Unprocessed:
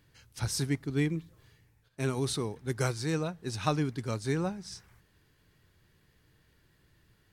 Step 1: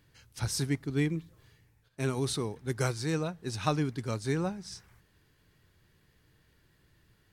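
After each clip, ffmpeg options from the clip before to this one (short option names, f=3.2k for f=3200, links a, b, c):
-af anull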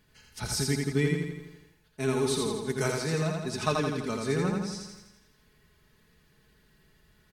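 -filter_complex "[0:a]aecho=1:1:4.7:0.62,asplit=2[a][b];[b]aecho=0:1:83|166|249|332|415|498|581|664:0.708|0.404|0.23|0.131|0.0747|0.0426|0.0243|0.0138[c];[a][c]amix=inputs=2:normalize=0"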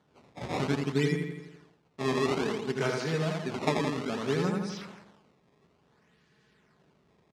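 -af "acrusher=samples=17:mix=1:aa=0.000001:lfo=1:lforange=27.2:lforate=0.59,highpass=130,lowpass=5.7k"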